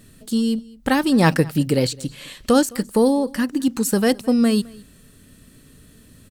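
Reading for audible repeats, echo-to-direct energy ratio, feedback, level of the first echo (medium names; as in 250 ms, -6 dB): 1, -23.5 dB, no regular repeats, -23.5 dB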